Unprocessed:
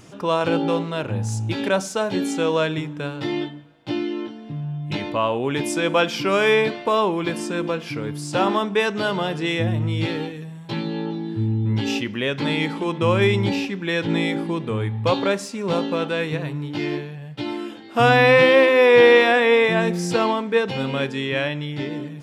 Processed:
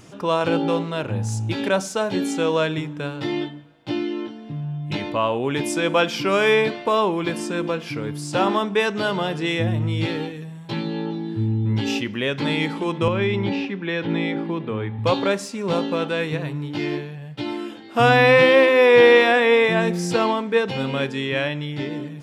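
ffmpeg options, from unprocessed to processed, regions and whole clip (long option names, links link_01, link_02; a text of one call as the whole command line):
ffmpeg -i in.wav -filter_complex "[0:a]asettb=1/sr,asplit=3[link_01][link_02][link_03];[link_01]atrim=end=13.084[link_04];[link_02]atrim=start=13.08:end=14.99,asetpts=PTS-STARTPTS,afade=type=in:duration=0.004:curve=qsin,afade=type=out:start_time=1.906:duration=0.004:curve=qsin,highpass=130,lowpass=3200,acrossover=split=250|3000[link_05][link_06][link_07];[link_06]acompressor=threshold=-23dB:ratio=2.5:attack=3.2:release=140:knee=2.83:detection=peak[link_08];[link_05][link_08][link_07]amix=inputs=3:normalize=0[link_09];[link_03]atrim=start=14.986[link_10];[link_04][link_09]acrossfade=duration=0.004:curve1=hsin:curve2=qsin[link_11];[link_11][link_10]acrossfade=duration=0.004:curve1=qsin:curve2=hsin" out.wav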